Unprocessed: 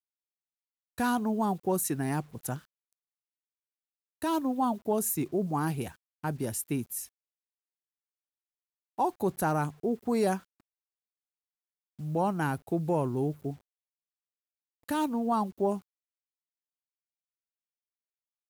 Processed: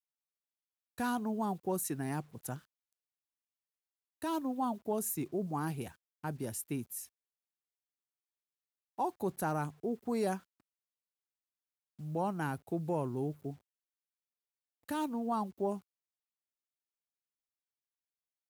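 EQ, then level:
high-pass filter 60 Hz
−6.0 dB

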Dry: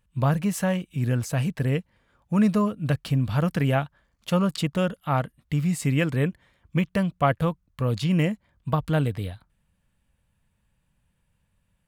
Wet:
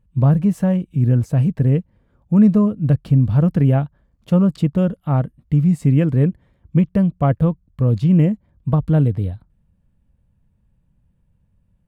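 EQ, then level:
tilt shelving filter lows +10 dB, about 770 Hz
0.0 dB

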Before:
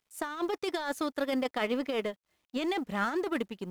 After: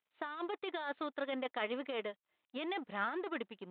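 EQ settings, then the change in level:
high-pass filter 510 Hz 6 dB per octave
Butterworth low-pass 3,800 Hz 96 dB per octave
high-frequency loss of the air 62 metres
−4.0 dB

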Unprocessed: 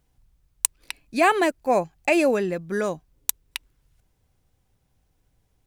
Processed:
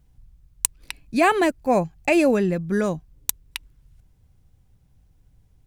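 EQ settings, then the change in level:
bass and treble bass +11 dB, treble 0 dB
0.0 dB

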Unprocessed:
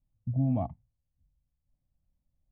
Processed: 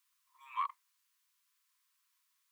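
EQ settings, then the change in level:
linear-phase brick-wall high-pass 940 Hz
+18.0 dB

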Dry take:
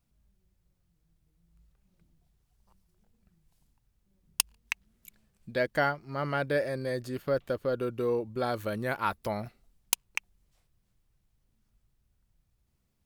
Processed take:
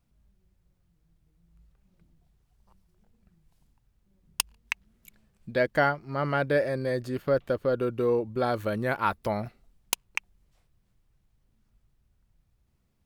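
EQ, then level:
high-shelf EQ 3,800 Hz −6.5 dB
+4.0 dB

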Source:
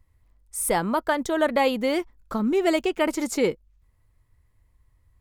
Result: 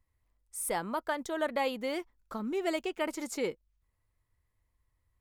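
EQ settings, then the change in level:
low-shelf EQ 270 Hz −6.5 dB
−8.5 dB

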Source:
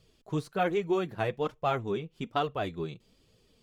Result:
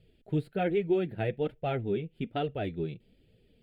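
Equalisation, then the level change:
high-shelf EQ 3,000 Hz −11 dB
phaser with its sweep stopped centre 2,600 Hz, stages 4
+3.0 dB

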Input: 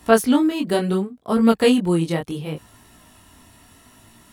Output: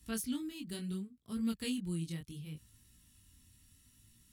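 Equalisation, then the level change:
guitar amp tone stack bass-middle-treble 6-0-2
parametric band 890 Hz −8.5 dB 2.9 octaves
+3.0 dB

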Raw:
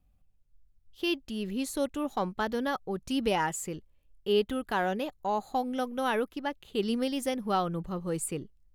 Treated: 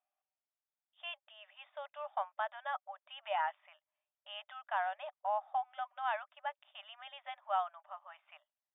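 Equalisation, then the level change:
linear-phase brick-wall band-pass 580–3,700 Hz
high-frequency loss of the air 140 metres
high-shelf EQ 2,800 Hz −9.5 dB
−2.5 dB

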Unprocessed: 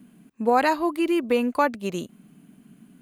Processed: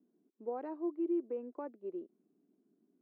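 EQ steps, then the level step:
four-pole ladder band-pass 400 Hz, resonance 65%
−8.0 dB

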